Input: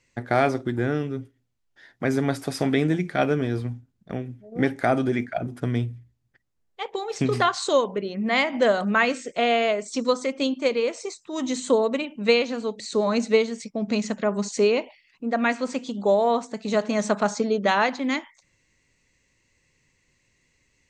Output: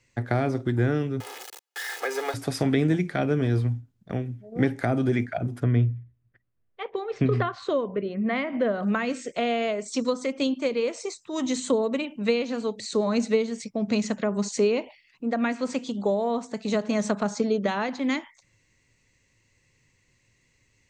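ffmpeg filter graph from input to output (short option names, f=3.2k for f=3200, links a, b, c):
-filter_complex "[0:a]asettb=1/sr,asplit=3[a][b][c];[a]atrim=end=1.204[d];[b]atrim=start=1.2:end=2.34,asetpts=PTS-STARTPTS,afade=t=in:d=0.004:c=qsin,afade=t=out:st=1.136:d=0.004:c=qsin,aeval=exprs='val(0)+0.5*0.0335*sgn(val(0))':c=same,highpass=f=500:w=0.5412,highpass=f=500:w=1.3066,aecho=1:1:2.4:0.74,atrim=end_sample=50274[e];[c]atrim=start=2.336[f];[d][e]acrossfade=d=0.004:c1=hsin:c2=qsin[g];[g][f]acrossfade=d=0.004:c1=qsin:c2=hsin,asettb=1/sr,asplit=3[h][i][j];[h]atrim=end=5.634[k];[i]atrim=start=5.63:end=8.83,asetpts=PTS-STARTPTS,afade=t=in:d=0.004:c=qsin,afade=t=out:st=3.196:d=0.004:c=qsin,lowpass=2.3k,bandreject=f=850:w=5.1[l];[j]atrim=start=8.826[m];[k][l]acrossfade=d=0.004:c1=hsin:c2=qsin[n];[n][m]acrossfade=d=0.004:c1=qsin:c2=hsin,equalizer=f=110:w=3.6:g=8,acrossover=split=400[o][p];[p]acompressor=threshold=-26dB:ratio=10[q];[o][q]amix=inputs=2:normalize=0"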